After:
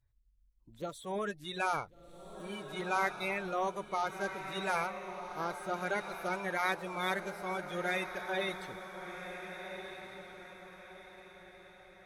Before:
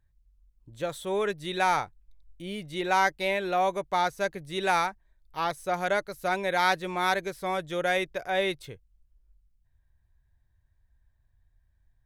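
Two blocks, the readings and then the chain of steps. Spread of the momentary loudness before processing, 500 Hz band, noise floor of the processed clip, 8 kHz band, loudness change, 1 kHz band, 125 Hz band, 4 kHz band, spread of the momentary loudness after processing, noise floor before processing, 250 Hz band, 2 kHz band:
11 LU, -8.0 dB, -66 dBFS, -7.0 dB, -8.5 dB, -8.5 dB, -5.5 dB, -8.0 dB, 18 LU, -69 dBFS, -6.0 dB, -6.0 dB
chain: bin magnitudes rounded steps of 30 dB; diffused feedback echo 1.476 s, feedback 40%, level -8 dB; gain -7.5 dB

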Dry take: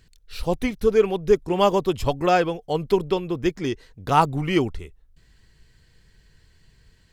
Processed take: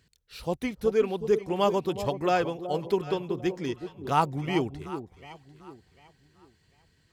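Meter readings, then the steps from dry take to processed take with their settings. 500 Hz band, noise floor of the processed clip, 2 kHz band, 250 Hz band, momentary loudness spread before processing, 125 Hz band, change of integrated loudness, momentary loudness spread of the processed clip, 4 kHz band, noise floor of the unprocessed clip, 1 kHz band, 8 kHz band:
-5.5 dB, -67 dBFS, -6.0 dB, -5.5 dB, 10 LU, -6.0 dB, -6.0 dB, 13 LU, -6.0 dB, -58 dBFS, -5.5 dB, -6.0 dB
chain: HPF 80 Hz 12 dB/oct; on a send: echo with dull and thin repeats by turns 0.373 s, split 850 Hz, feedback 52%, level -9.5 dB; on the sum: gain -6 dB

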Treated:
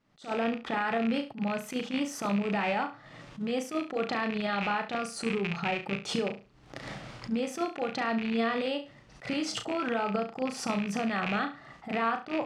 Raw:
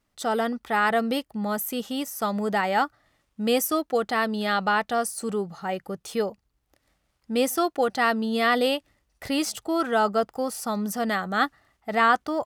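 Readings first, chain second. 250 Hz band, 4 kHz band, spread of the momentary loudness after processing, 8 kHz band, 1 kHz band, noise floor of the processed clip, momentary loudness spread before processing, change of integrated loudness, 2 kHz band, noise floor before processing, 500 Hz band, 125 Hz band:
-3.0 dB, -5.5 dB, 9 LU, -9.0 dB, -8.0 dB, -55 dBFS, 8 LU, -6.0 dB, -6.5 dB, -74 dBFS, -6.5 dB, 0.0 dB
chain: rattling part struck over -37 dBFS, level -17 dBFS; recorder AGC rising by 57 dB/s; resonant low shelf 100 Hz -9 dB, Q 3; limiter -14.5 dBFS, peak gain reduction 10 dB; air absorption 120 m; compressor 10:1, threshold -27 dBFS, peak gain reduction 9.5 dB; flutter echo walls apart 6 m, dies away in 0.31 s; attack slew limiter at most 230 dB/s

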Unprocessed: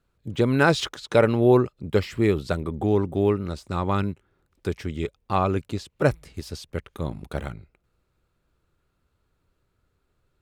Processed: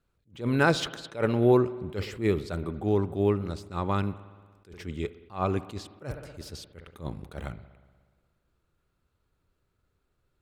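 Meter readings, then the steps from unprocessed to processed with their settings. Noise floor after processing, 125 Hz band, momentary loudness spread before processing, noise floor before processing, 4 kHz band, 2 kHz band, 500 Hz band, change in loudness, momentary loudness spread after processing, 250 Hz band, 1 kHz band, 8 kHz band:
-76 dBFS, -4.5 dB, 16 LU, -73 dBFS, -4.0 dB, -4.5 dB, -5.0 dB, -3.5 dB, 19 LU, -4.5 dB, -5.0 dB, -4.0 dB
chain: spring tank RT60 1.6 s, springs 59 ms, chirp 35 ms, DRR 16 dB; attack slew limiter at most 200 dB/s; gain -3.5 dB

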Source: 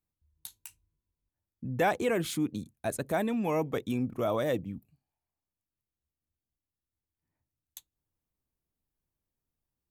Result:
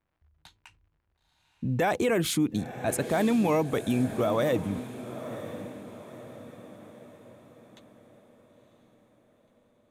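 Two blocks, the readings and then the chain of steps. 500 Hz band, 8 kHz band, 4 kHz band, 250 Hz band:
+3.5 dB, +6.5 dB, +6.0 dB, +5.5 dB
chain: crackle 180/s -64 dBFS; low-pass opened by the level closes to 1700 Hz, open at -29 dBFS; limiter -24.5 dBFS, peak gain reduction 7.5 dB; on a send: diffused feedback echo 0.982 s, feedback 46%, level -12 dB; on the sum: gain +7 dB

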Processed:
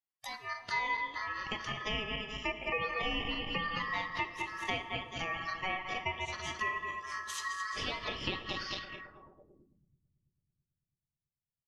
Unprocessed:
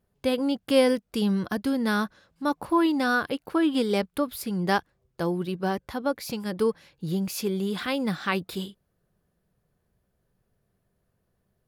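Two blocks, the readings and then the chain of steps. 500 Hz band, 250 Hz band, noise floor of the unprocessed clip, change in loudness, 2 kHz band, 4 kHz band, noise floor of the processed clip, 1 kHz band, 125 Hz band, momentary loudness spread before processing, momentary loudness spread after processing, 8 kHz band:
-16.5 dB, -21.0 dB, -75 dBFS, -9.0 dB, -2.5 dB, -2.5 dB, under -85 dBFS, -5.5 dB, -12.5 dB, 9 LU, 6 LU, -7.0 dB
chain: regenerating reverse delay 0.108 s, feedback 70%, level -5.5 dB; weighting filter A; treble ducked by the level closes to 1900 Hz, closed at -25.5 dBFS; spectral noise reduction 20 dB; low shelf 250 Hz -7 dB; compressor, threshold -28 dBFS, peak gain reduction 9 dB; ring modulator 1500 Hz; on a send: dark delay 0.331 s, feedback 53%, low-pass 1100 Hz, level -14 dB; on the sum: two-slope reverb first 0.96 s, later 2.7 s, DRR 11 dB; low-pass sweep 11000 Hz -> 130 Hz, 8.46–9.9

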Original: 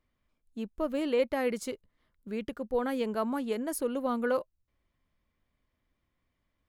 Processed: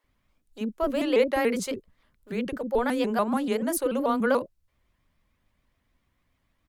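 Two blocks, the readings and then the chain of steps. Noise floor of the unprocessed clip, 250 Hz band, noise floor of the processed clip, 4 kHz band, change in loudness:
-81 dBFS, +5.5 dB, -74 dBFS, +6.5 dB, +5.5 dB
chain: bands offset in time highs, lows 40 ms, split 390 Hz; shaped vibrato saw up 6.9 Hz, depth 160 cents; gain +7 dB

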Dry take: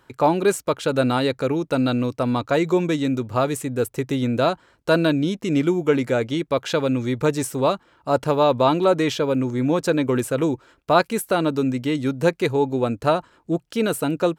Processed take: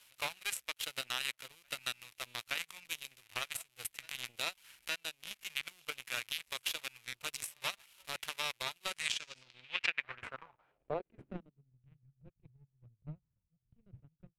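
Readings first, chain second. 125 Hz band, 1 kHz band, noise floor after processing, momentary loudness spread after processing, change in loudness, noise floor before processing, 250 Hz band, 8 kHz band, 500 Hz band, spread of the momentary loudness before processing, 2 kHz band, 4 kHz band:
-30.0 dB, -23.5 dB, -83 dBFS, 13 LU, -18.0 dB, -61 dBFS, -37.0 dB, -8.5 dB, -30.5 dB, 5 LU, -10.0 dB, -7.0 dB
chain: zero-crossing step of -30 dBFS; passive tone stack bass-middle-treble 10-0-10; LFO notch square 1.4 Hz 340–1900 Hz; on a send: reverse echo 0.871 s -15 dB; on the sum: power-law curve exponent 3; in parallel at -10 dB: bit-crush 8-bit; on the sum: low-pass sweep 12000 Hz -> 130 Hz, 8.85–11.79; compressor 12:1, threshold -45 dBFS, peak gain reduction 20.5 dB; limiter -34.5 dBFS, peak gain reduction 9.5 dB; bell 2500 Hz +13 dB 1.3 oct; gain +10.5 dB

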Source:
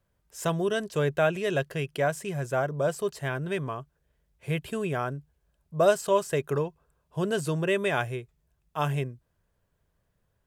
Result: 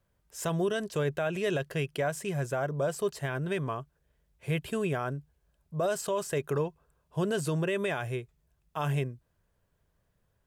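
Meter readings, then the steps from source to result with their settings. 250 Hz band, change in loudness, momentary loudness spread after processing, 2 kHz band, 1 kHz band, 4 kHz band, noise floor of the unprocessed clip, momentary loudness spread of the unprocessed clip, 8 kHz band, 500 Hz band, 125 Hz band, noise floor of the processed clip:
-1.5 dB, -3.5 dB, 9 LU, -4.0 dB, -5.0 dB, -3.0 dB, -75 dBFS, 12 LU, -0.5 dB, -4.0 dB, -1.5 dB, -75 dBFS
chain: limiter -21 dBFS, peak gain reduction 11 dB

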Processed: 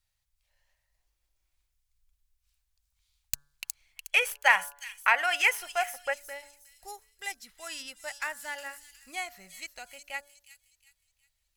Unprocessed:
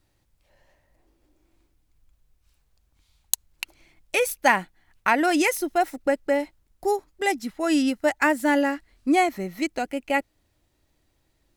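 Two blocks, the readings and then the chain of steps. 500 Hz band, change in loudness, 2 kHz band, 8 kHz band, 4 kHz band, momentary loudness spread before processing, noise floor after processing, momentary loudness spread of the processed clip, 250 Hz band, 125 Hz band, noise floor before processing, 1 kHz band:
-15.0 dB, -5.5 dB, -1.5 dB, -6.0 dB, -1.5 dB, 9 LU, -79 dBFS, 20 LU, under -30 dB, n/a, -69 dBFS, -8.0 dB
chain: tracing distortion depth 0.054 ms; passive tone stack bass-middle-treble 10-0-10; de-hum 143 Hz, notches 12; on a send: thin delay 0.363 s, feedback 37%, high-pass 5100 Hz, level -4 dB; on the sum: spectral gain 3.97–6.14, 400–3400 Hz +11 dB; gain -5.5 dB

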